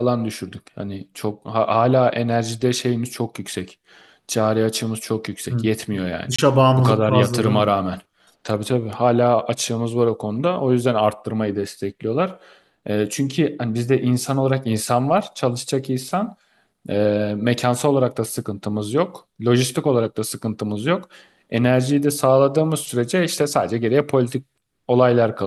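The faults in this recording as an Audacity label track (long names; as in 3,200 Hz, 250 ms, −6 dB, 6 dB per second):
6.360000	6.380000	drop-out 25 ms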